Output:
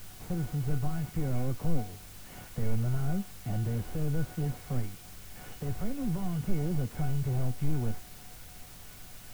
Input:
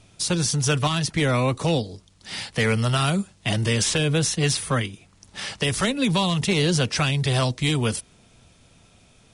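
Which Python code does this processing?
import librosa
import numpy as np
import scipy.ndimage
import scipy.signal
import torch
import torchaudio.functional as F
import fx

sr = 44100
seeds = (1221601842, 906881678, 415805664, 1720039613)

p1 = fx.delta_mod(x, sr, bps=16000, step_db=-38.5)
p2 = fx.tilt_eq(p1, sr, slope=-2.5)
p3 = fx.comb_fb(p2, sr, f0_hz=740.0, decay_s=0.37, harmonics='all', damping=0.0, mix_pct=90)
p4 = fx.quant_dither(p3, sr, seeds[0], bits=8, dither='triangular')
y = p3 + (p4 * librosa.db_to_amplitude(-3.5))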